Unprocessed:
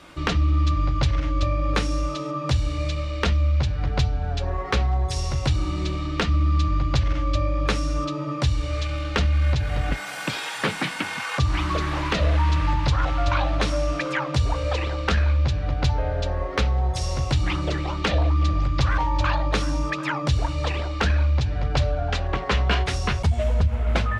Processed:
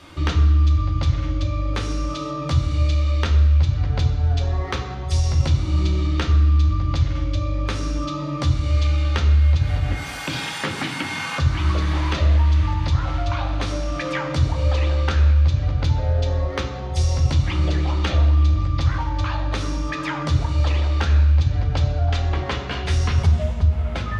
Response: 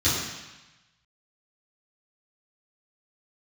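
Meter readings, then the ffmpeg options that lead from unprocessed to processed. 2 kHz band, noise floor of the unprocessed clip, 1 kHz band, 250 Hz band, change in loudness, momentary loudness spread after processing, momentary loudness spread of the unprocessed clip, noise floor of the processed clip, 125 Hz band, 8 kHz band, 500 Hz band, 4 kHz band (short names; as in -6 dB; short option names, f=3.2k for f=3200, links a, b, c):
-1.5 dB, -31 dBFS, -2.0 dB, +0.5 dB, +3.0 dB, 9 LU, 5 LU, -29 dBFS, +4.5 dB, 0.0 dB, -1.5 dB, -0.5 dB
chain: -filter_complex "[0:a]acompressor=threshold=-23dB:ratio=6,asplit=2[a][b];[1:a]atrim=start_sample=2205[c];[b][c]afir=irnorm=-1:irlink=0,volume=-17.5dB[d];[a][d]amix=inputs=2:normalize=0"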